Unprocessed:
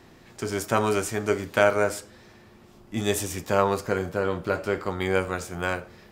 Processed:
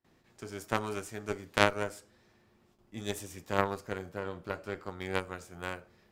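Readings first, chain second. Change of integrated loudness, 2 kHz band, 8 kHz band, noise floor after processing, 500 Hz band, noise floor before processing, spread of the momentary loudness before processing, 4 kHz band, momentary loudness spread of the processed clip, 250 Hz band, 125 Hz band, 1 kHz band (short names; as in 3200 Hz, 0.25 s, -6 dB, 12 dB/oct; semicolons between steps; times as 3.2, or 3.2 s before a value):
-9.0 dB, -6.5 dB, -11.5 dB, -67 dBFS, -11.0 dB, -52 dBFS, 10 LU, -4.0 dB, 16 LU, -9.0 dB, -9.0 dB, -7.0 dB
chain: gate with hold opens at -42 dBFS; added harmonics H 2 -13 dB, 3 -12 dB, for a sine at -3 dBFS; gain -2 dB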